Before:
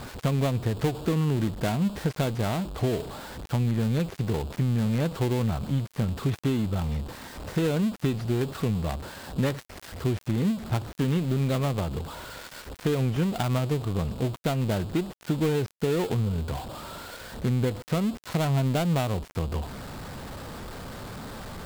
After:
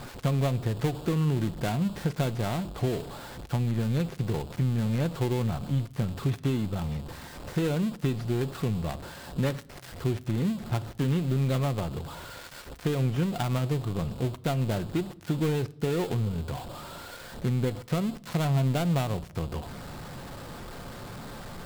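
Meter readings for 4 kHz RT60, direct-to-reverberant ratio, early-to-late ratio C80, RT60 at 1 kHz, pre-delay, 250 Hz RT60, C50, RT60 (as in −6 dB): 0.55 s, 11.5 dB, 24.0 dB, 0.60 s, 6 ms, 1.1 s, 21.5 dB, 0.70 s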